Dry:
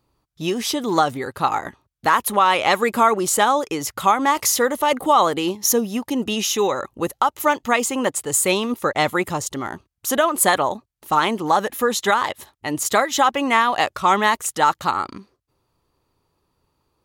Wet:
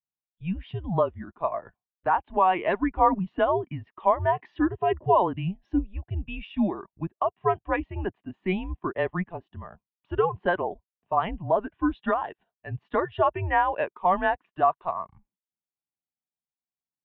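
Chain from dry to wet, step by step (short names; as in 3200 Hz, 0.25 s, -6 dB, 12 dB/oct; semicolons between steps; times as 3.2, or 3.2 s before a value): mistuned SSB -180 Hz 220–3300 Hz; spectral expander 1.5:1; gain -5 dB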